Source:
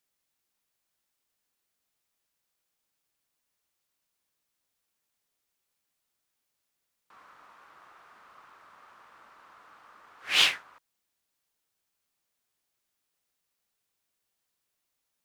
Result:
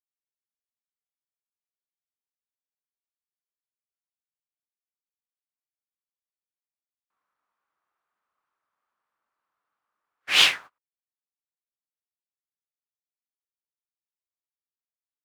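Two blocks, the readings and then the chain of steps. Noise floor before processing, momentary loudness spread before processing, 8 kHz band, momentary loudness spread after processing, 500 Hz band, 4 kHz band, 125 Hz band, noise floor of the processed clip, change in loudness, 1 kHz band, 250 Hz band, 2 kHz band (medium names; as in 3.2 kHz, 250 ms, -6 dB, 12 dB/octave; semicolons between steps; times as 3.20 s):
-82 dBFS, 11 LU, +4.5 dB, 11 LU, +4.0 dB, +4.5 dB, no reading, under -85 dBFS, +5.5 dB, +3.5 dB, +4.5 dB, +4.5 dB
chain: gate -43 dBFS, range -33 dB; trim +4.5 dB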